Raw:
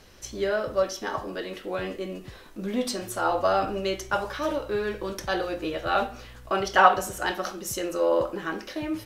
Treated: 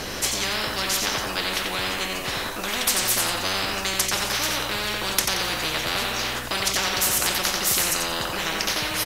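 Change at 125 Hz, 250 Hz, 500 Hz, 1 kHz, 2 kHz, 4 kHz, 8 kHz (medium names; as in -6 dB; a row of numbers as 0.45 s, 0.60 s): +4.5 dB, -2.0 dB, -6.0 dB, -2.5 dB, +5.5 dB, +14.0 dB, +15.5 dB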